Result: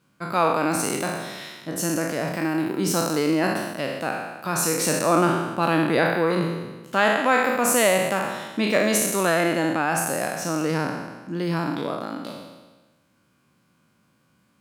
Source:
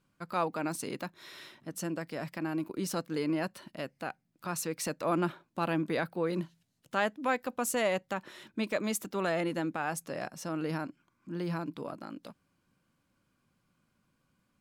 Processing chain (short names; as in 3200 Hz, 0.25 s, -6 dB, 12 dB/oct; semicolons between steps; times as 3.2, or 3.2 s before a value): spectral trails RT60 1.25 s; HPF 95 Hz; gain +8 dB